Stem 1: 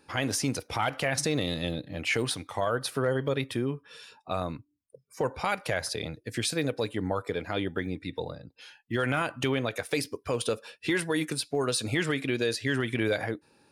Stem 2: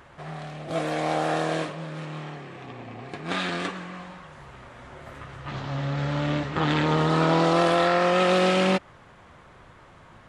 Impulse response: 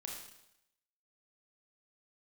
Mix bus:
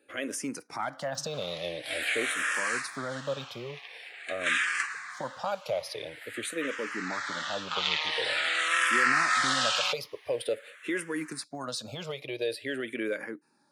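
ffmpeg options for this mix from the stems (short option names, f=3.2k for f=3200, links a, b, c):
-filter_complex "[0:a]highpass=190,equalizer=f=580:t=o:w=0.32:g=9,volume=-3.5dB[a];[1:a]highpass=f=1.7k:t=q:w=1.8,aemphasis=mode=production:type=50kf,adelay=1150,volume=0.5dB[b];[a][b]amix=inputs=2:normalize=0,asplit=2[c][d];[d]afreqshift=-0.47[e];[c][e]amix=inputs=2:normalize=1"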